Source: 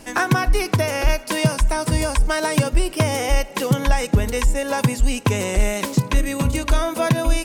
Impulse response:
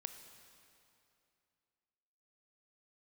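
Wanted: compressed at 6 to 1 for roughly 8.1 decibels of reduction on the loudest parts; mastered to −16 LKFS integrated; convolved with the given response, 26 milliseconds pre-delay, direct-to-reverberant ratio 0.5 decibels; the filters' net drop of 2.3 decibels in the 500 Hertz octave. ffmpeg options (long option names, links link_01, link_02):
-filter_complex "[0:a]equalizer=frequency=500:width_type=o:gain=-3,acompressor=threshold=-20dB:ratio=6,asplit=2[link_01][link_02];[1:a]atrim=start_sample=2205,adelay=26[link_03];[link_02][link_03]afir=irnorm=-1:irlink=0,volume=3dB[link_04];[link_01][link_04]amix=inputs=2:normalize=0,volume=7dB"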